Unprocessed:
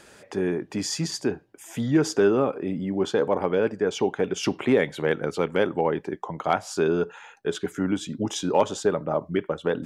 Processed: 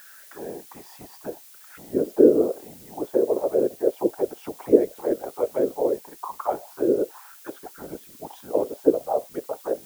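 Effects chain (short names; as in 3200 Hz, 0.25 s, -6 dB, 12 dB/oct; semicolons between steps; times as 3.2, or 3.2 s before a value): auto-wah 400–1600 Hz, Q 6.1, down, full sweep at -17.5 dBFS; whisperiser; added noise blue -55 dBFS; gain +6.5 dB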